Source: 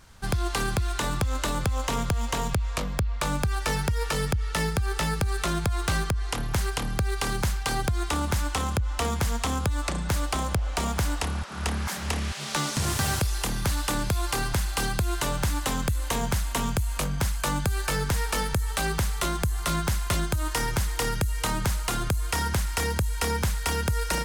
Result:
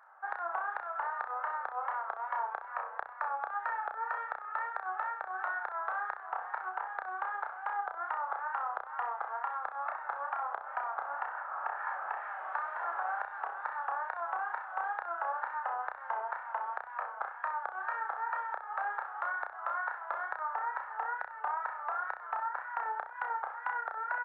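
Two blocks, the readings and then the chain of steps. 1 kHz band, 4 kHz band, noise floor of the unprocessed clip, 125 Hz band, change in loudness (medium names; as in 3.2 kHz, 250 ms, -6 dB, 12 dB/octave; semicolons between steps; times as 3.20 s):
-1.0 dB, under -35 dB, -32 dBFS, under -40 dB, -9.0 dB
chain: elliptic band-pass 650–1600 Hz, stop band 60 dB; comb 2.3 ms, depth 42%; compression, threshold -34 dBFS, peak gain reduction 8 dB; wow and flutter 92 cents; flutter echo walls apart 5.5 m, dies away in 0.35 s; trim +1.5 dB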